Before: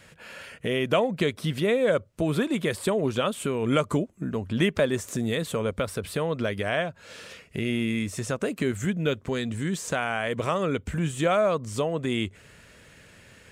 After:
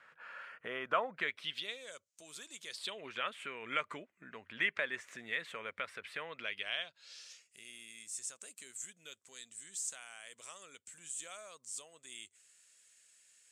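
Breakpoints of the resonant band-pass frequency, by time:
resonant band-pass, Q 2.6
0:01.09 1,300 Hz
0:01.90 6,800 Hz
0:02.60 6,800 Hz
0:03.10 2,000 Hz
0:06.26 2,000 Hz
0:07.57 7,900 Hz

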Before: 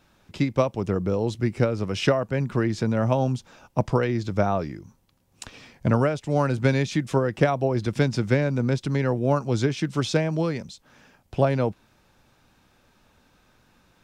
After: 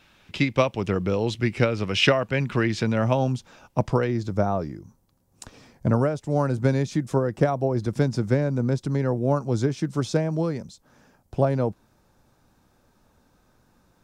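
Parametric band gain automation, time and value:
parametric band 2,700 Hz 1.5 octaves
0:02.76 +10 dB
0:03.36 +0.5 dB
0:03.87 +0.5 dB
0:04.42 −10 dB

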